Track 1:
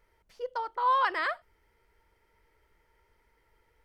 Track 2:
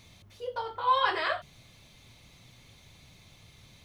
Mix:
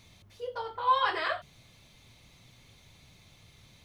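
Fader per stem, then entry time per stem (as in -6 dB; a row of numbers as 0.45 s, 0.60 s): -9.5 dB, -2.0 dB; 0.00 s, 0.00 s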